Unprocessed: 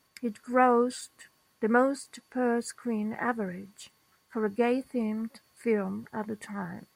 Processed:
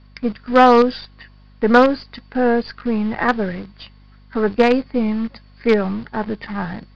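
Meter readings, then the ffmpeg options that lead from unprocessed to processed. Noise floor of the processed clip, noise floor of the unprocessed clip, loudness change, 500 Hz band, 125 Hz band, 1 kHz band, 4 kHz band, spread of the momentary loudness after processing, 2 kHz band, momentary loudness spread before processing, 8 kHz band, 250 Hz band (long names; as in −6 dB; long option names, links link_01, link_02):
−47 dBFS, −69 dBFS, +11.5 dB, +11.5 dB, +11.5 dB, +12.0 dB, +16.5 dB, 14 LU, +11.5 dB, 14 LU, can't be measured, +11.5 dB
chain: -filter_complex "[0:a]aeval=exprs='val(0)+0.00178*(sin(2*PI*50*n/s)+sin(2*PI*2*50*n/s)/2+sin(2*PI*3*50*n/s)/3+sin(2*PI*4*50*n/s)/4+sin(2*PI*5*50*n/s)/5)':channel_layout=same,asplit=2[link_01][link_02];[link_02]acrusher=bits=4:dc=4:mix=0:aa=0.000001,volume=-5dB[link_03];[link_01][link_03]amix=inputs=2:normalize=0,aresample=11025,aresample=44100,acontrast=74,volume=2.5dB"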